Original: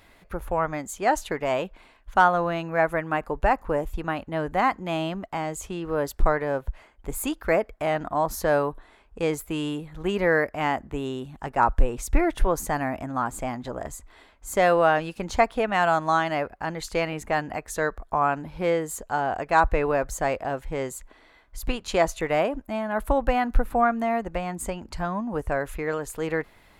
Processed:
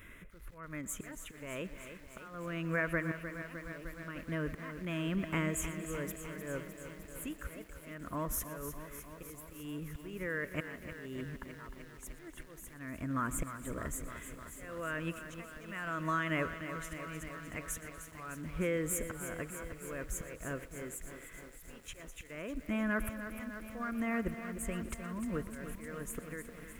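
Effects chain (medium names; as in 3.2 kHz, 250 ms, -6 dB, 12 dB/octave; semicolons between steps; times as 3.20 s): static phaser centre 1.9 kHz, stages 4; compression 12:1, threshold -32 dBFS, peak gain reduction 20.5 dB; slow attack 623 ms; on a send: thinning echo 120 ms, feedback 64%, high-pass 210 Hz, level -18.5 dB; on the sum: bit-crushed delay 305 ms, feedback 80%, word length 10-bit, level -10 dB; trim +3.5 dB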